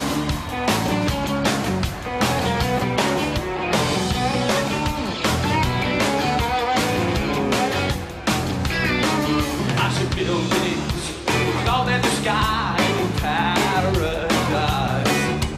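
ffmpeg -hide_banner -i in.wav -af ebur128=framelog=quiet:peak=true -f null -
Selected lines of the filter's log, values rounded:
Integrated loudness:
  I:         -20.9 LUFS
  Threshold: -30.9 LUFS
Loudness range:
  LRA:         1.4 LU
  Threshold: -40.8 LUFS
  LRA low:   -21.4 LUFS
  LRA high:  -20.0 LUFS
True peak:
  Peak:       -6.4 dBFS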